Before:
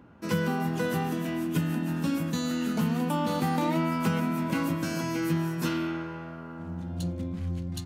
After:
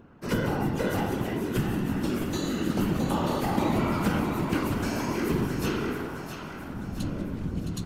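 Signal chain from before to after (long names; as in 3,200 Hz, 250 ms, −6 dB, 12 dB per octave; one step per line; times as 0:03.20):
random phases in short frames
echo with a time of its own for lows and highs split 720 Hz, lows 119 ms, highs 665 ms, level −8 dB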